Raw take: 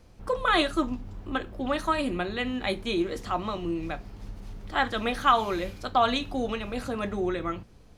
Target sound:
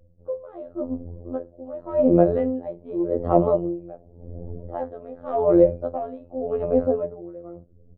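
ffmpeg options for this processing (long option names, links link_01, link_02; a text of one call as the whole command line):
ffmpeg -i in.wav -af "afftdn=noise_reduction=22:noise_floor=-48,dynaudnorm=framelen=530:gausssize=7:maxgain=15.5dB,aeval=exprs='0.944*sin(PI/2*2.82*val(0)/0.944)':channel_layout=same,lowpass=frequency=550:width_type=q:width=4.9,afftfilt=real='hypot(re,im)*cos(PI*b)':imag='0':win_size=2048:overlap=0.75,aeval=exprs='val(0)*pow(10,-21*(0.5-0.5*cos(2*PI*0.88*n/s))/20)':channel_layout=same,volume=-7.5dB" out.wav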